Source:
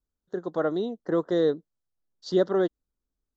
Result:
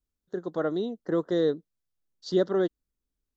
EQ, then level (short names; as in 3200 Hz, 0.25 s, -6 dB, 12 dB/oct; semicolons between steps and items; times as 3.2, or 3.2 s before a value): bell 850 Hz -4 dB 1.6 oct; 0.0 dB